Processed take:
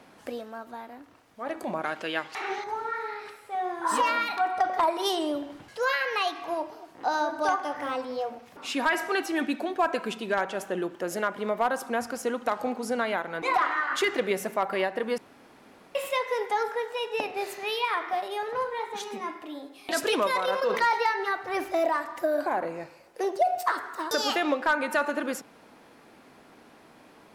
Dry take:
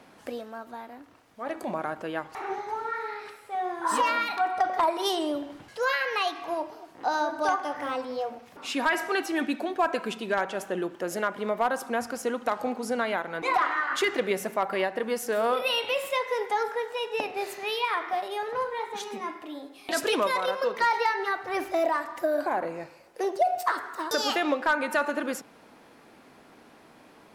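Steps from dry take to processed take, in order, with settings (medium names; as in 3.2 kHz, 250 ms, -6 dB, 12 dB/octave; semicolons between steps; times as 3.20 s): 1.84–2.64 s: frequency weighting D; 15.18–15.95 s: room tone; 20.34–20.94 s: decay stretcher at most 60 dB/s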